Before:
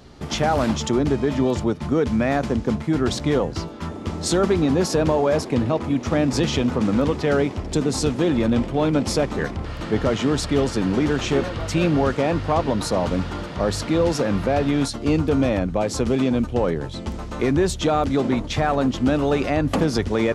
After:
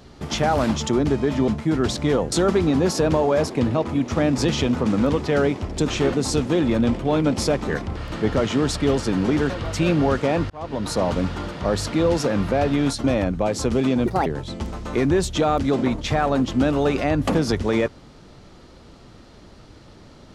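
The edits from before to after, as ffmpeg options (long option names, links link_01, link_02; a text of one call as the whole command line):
ffmpeg -i in.wav -filter_complex "[0:a]asplit=10[link_01][link_02][link_03][link_04][link_05][link_06][link_07][link_08][link_09][link_10];[link_01]atrim=end=1.482[link_11];[link_02]atrim=start=2.698:end=3.542[link_12];[link_03]atrim=start=4.268:end=7.832[link_13];[link_04]atrim=start=11.188:end=11.452[link_14];[link_05]atrim=start=7.828:end=11.192[link_15];[link_06]atrim=start=11.448:end=12.45,asetpts=PTS-STARTPTS,afade=type=out:start_time=0.998:duration=0.004:curve=hsin[link_16];[link_07]atrim=start=12.45:end=14.992,asetpts=PTS-STARTPTS,afade=type=in:duration=0.47[link_17];[link_08]atrim=start=15.388:end=16.414[link_18];[link_09]atrim=start=16.41:end=16.72,asetpts=PTS-STARTPTS,asetrate=68355,aresample=44100[link_19];[link_10]atrim=start=16.716[link_20];[link_11][link_12]acrossfade=duration=0.004:curve1=hsin:curve2=hsin[link_21];[link_21][link_13]acrossfade=duration=0.004:curve1=hsin:curve2=hsin[link_22];[link_22][link_14]acrossfade=duration=0.004:curve1=hsin:curve2=hsin[link_23];[link_23][link_15]acrossfade=duration=0.004:curve1=hsin:curve2=hsin[link_24];[link_16][link_17]concat=n=2:v=0:a=1[link_25];[link_24][link_25]acrossfade=duration=0.004:curve1=hsin:curve2=hsin[link_26];[link_26][link_18]acrossfade=duration=0.004:curve1=hsin:curve2=hsin[link_27];[link_27][link_19]acrossfade=duration=0.004:curve1=hsin:curve2=hsin[link_28];[link_28][link_20]acrossfade=duration=0.004:curve1=hsin:curve2=hsin" out.wav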